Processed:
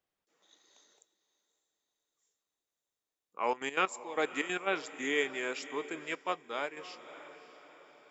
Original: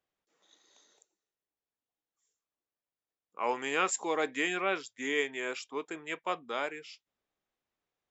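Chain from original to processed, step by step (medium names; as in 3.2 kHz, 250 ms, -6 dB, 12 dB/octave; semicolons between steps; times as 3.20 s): 3.51–4.66 s: trance gate "x.x....x." 187 bpm -12 dB; echo that smears into a reverb 578 ms, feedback 49%, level -15 dB; 6.15–6.77 s: upward expansion 1.5:1, over -45 dBFS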